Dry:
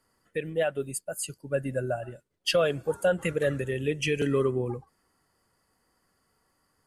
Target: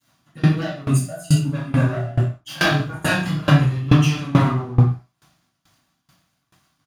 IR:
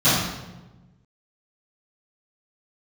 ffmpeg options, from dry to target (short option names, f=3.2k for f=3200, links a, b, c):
-filter_complex "[0:a]aeval=exprs='0.211*sin(PI/2*3.55*val(0)/0.211)':c=same,asettb=1/sr,asplit=3[a][b][c];[a]atrim=end=1.254[d];[b]atrim=start=1.25:end=3.56,asetpts=PTS-STARTPTS,afade=t=in:d=0.004:c=qsin,afade=t=out:st=2.306:d=0.004:c=qsin,asplit=2[e][f];[f]adelay=26,volume=-2dB[g];[e][g]amix=inputs=2:normalize=0,atrim=end_sample=101871[h];[c]atrim=start=3.556[i];[d][h]acrossfade=d=0.004:c1=hsin:c2=qsin[j];[j][i]acrossfade=d=0.004:c1=qsin:c2=hsin,acompressor=threshold=-40dB:ratio=2.5,aecho=1:1:73|146|219|292|365|438:0.141|0.0848|0.0509|0.0305|0.0183|0.011,aeval=exprs='sgn(val(0))*max(abs(val(0))-0.00282,0)':c=same,equalizer=f=480:w=4.6:g=-12[k];[1:a]atrim=start_sample=2205,afade=t=out:st=0.24:d=0.01,atrim=end_sample=11025[l];[k][l]afir=irnorm=-1:irlink=0,aeval=exprs='val(0)*pow(10,-22*if(lt(mod(2.3*n/s,1),2*abs(2.3)/1000),1-mod(2.3*n/s,1)/(2*abs(2.3)/1000),(mod(2.3*n/s,1)-2*abs(2.3)/1000)/(1-2*abs(2.3)/1000))/20)':c=same,volume=-2dB"